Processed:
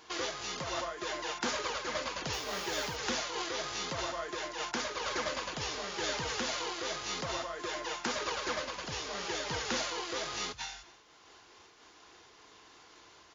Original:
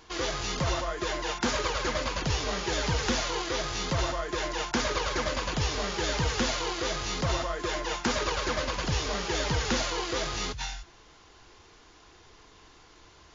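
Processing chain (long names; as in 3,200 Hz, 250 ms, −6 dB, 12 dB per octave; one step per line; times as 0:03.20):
high-pass filter 340 Hz 6 dB per octave
in parallel at 0 dB: downward compressor, threshold −39 dBFS, peak gain reduction 13 dB
0:02.32–0:02.95: on the sum: background noise blue −49 dBFS
repeating echo 251 ms, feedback 15%, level −24 dB
amplitude modulation by smooth noise, depth 55%
level −4.5 dB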